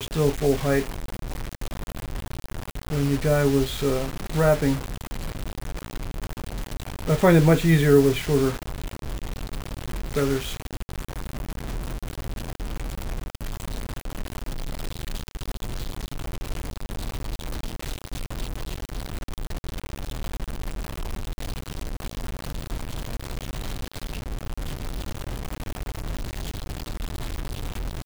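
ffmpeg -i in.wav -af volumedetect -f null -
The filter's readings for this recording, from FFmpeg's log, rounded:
mean_volume: -26.5 dB
max_volume: -5.0 dB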